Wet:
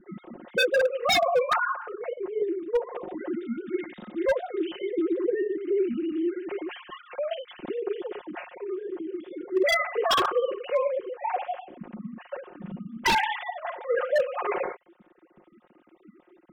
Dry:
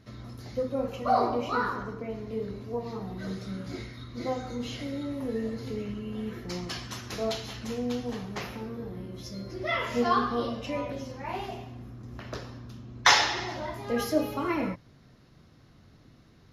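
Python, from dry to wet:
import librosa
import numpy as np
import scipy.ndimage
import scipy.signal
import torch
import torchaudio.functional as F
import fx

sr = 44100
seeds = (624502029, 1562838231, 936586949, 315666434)

y = fx.sine_speech(x, sr)
y = fx.low_shelf(y, sr, hz=450.0, db=8.5)
y = y + 0.88 * np.pad(y, (int(5.6 * sr / 1000.0), 0))[:len(y)]
y = 10.0 ** (-17.5 / 20.0) * (np.abs((y / 10.0 ** (-17.5 / 20.0) + 3.0) % 4.0 - 2.0) - 1.0)
y = y * librosa.db_to_amplitude(1.5)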